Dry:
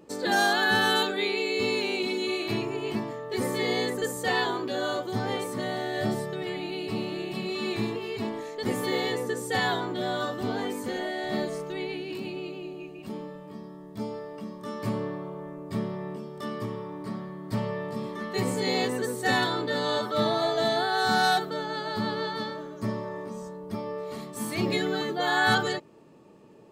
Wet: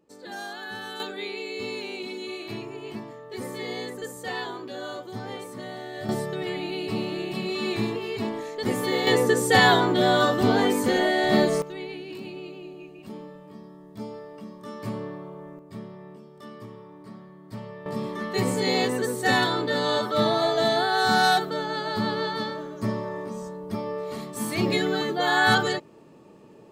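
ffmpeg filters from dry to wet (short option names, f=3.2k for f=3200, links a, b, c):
-af "asetnsamples=n=441:p=0,asendcmd='1 volume volume -6dB;6.09 volume volume 2.5dB;9.07 volume volume 9.5dB;11.62 volume volume -2.5dB;15.59 volume volume -8.5dB;17.86 volume volume 3dB',volume=-13.5dB"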